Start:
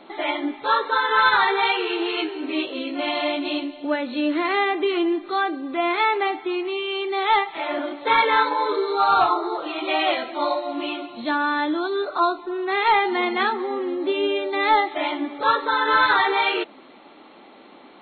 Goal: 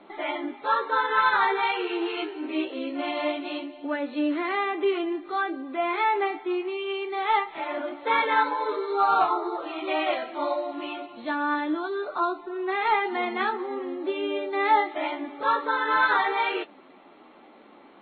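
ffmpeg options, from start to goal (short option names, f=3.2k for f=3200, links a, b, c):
-filter_complex "[0:a]lowpass=2.8k,acrossover=split=180[a][b];[a]acompressor=threshold=-59dB:ratio=6[c];[c][b]amix=inputs=2:normalize=0,flanger=delay=10:depth=7.7:regen=45:speed=0.24:shape=triangular" -ar 44100 -c:a aac -b:a 48k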